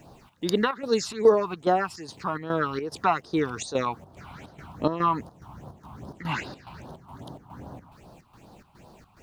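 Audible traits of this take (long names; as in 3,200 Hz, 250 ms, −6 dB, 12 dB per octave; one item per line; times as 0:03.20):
phaser sweep stages 6, 2.5 Hz, lowest notch 450–2,300 Hz
a quantiser's noise floor 12 bits, dither none
chopped level 2.4 Hz, depth 65%, duty 70%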